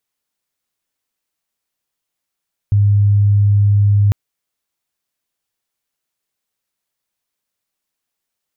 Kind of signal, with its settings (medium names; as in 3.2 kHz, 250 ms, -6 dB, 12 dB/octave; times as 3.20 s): tone sine 102 Hz -8.5 dBFS 1.40 s